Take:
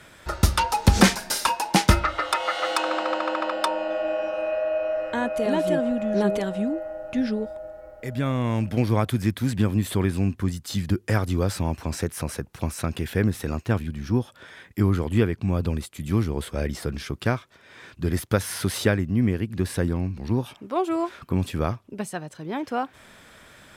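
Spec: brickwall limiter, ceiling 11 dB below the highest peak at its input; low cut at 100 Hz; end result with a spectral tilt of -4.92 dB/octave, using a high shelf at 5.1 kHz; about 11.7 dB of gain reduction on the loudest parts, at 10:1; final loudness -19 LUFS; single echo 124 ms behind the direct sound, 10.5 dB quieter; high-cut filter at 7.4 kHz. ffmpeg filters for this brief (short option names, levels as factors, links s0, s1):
-af "highpass=100,lowpass=7400,highshelf=f=5100:g=7.5,acompressor=threshold=0.0708:ratio=10,alimiter=limit=0.112:level=0:latency=1,aecho=1:1:124:0.299,volume=3.98"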